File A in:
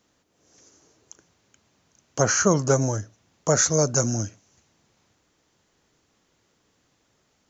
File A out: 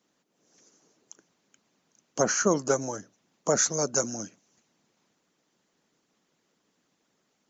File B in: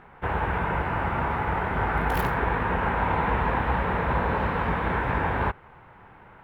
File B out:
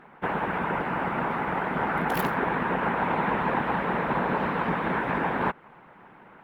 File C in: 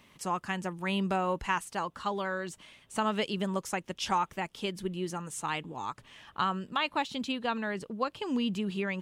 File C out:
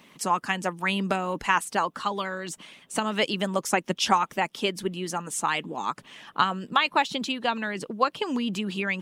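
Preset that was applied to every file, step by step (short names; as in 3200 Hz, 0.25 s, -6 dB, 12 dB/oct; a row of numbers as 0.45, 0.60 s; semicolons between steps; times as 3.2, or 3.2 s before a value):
harmonic-percussive split harmonic -10 dB; resonant low shelf 120 Hz -13 dB, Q 1.5; match loudness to -27 LUFS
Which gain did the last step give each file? -2.5, +3.0, +9.5 dB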